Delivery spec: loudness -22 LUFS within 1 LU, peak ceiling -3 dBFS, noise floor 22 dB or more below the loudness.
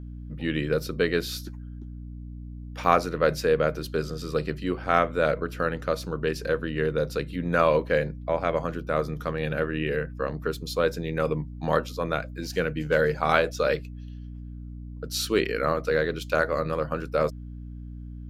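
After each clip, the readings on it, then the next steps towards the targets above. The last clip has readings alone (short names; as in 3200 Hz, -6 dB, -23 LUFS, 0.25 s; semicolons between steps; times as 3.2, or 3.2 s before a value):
dropouts 1; longest dropout 1.1 ms; hum 60 Hz; harmonics up to 300 Hz; hum level -36 dBFS; loudness -26.5 LUFS; peak -4.0 dBFS; loudness target -22.0 LUFS
-> interpolate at 2.84, 1.1 ms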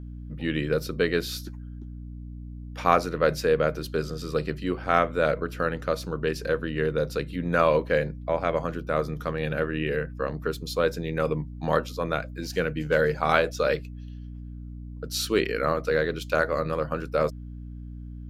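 dropouts 0; hum 60 Hz; harmonics up to 300 Hz; hum level -36 dBFS
-> notches 60/120/180/240/300 Hz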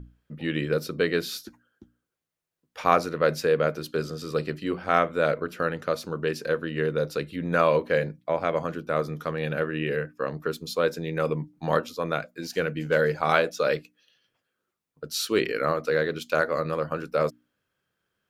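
hum none; loudness -27.0 LUFS; peak -4.0 dBFS; loudness target -22.0 LUFS
-> gain +5 dB; limiter -3 dBFS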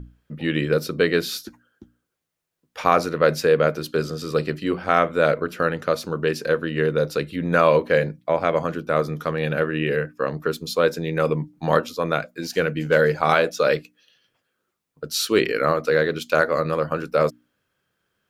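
loudness -22.0 LUFS; peak -3.0 dBFS; noise floor -77 dBFS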